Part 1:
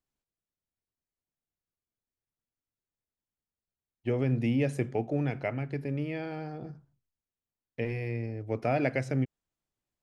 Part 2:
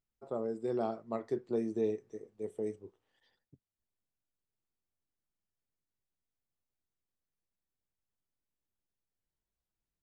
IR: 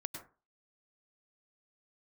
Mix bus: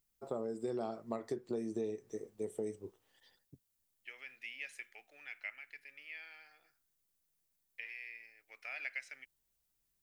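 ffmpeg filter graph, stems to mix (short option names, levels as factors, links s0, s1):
-filter_complex "[0:a]highpass=f=2100:t=q:w=2,volume=0.376[s0];[1:a]crystalizer=i=2:c=0,volume=1.41[s1];[s0][s1]amix=inputs=2:normalize=0,acompressor=threshold=0.0178:ratio=6"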